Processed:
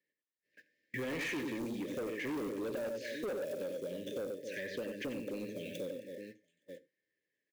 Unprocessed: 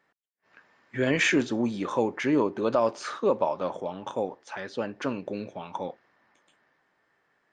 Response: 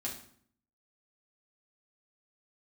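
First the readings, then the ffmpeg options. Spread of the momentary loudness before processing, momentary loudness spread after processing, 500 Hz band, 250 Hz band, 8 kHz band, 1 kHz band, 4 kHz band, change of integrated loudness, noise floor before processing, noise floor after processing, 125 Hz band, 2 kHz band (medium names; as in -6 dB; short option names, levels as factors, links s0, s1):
13 LU, 12 LU, -10.5 dB, -11.0 dB, -11.5 dB, -19.5 dB, -11.0 dB, -11.5 dB, -72 dBFS, under -85 dBFS, -12.0 dB, -11.0 dB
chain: -filter_complex "[0:a]acrossover=split=3300[s0][s1];[s1]acompressor=threshold=0.00158:ratio=4:attack=1:release=60[s2];[s0][s2]amix=inputs=2:normalize=0,acrusher=bits=6:mode=log:mix=0:aa=0.000001,asuperstop=centerf=990:order=20:qfactor=0.94,bass=f=250:g=-4,treble=f=4000:g=2,aecho=1:1:91|266|867:0.501|0.168|0.1,agate=range=0.0708:threshold=0.00178:ratio=16:detection=peak,highpass=79,asplit=2[s3][s4];[1:a]atrim=start_sample=2205,afade=t=out:st=0.22:d=0.01,atrim=end_sample=10143,asetrate=57330,aresample=44100[s5];[s4][s5]afir=irnorm=-1:irlink=0,volume=0.335[s6];[s3][s6]amix=inputs=2:normalize=0,asoftclip=type=tanh:threshold=0.0501,acompressor=threshold=0.00501:ratio=4,volume=2"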